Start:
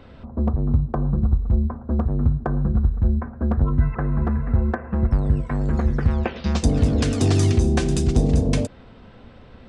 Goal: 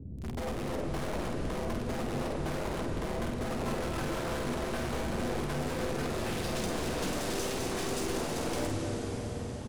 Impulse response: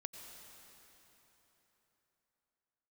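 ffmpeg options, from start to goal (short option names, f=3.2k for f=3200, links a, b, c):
-filter_complex "[0:a]highpass=72,lowshelf=f=140:g=4,bandreject=f=50:t=h:w=6,bandreject=f=100:t=h:w=6,bandreject=f=150:t=h:w=6,bandreject=f=200:t=h:w=6,bandreject=f=250:t=h:w=6,bandreject=f=300:t=h:w=6,bandreject=f=350:t=h:w=6,asplit=2[a][b];[b]acompressor=threshold=-28dB:ratio=6,volume=-2dB[c];[a][c]amix=inputs=2:normalize=0,alimiter=limit=-14.5dB:level=0:latency=1:release=12,acrossover=split=300[d][e];[d]aeval=exprs='0.0422*(abs(mod(val(0)/0.0422+3,4)-2)-1)':c=same[f];[e]acrusher=bits=5:mix=0:aa=0.000001[g];[f][g]amix=inputs=2:normalize=0,aeval=exprs='(tanh(70.8*val(0)+0.4)-tanh(0.4))/70.8':c=same,asplit=2[h][i];[i]adelay=49,volume=-5.5dB[j];[h][j]amix=inputs=2:normalize=0[k];[1:a]atrim=start_sample=2205,asetrate=23373,aresample=44100[l];[k][l]afir=irnorm=-1:irlink=0,volume=3.5dB"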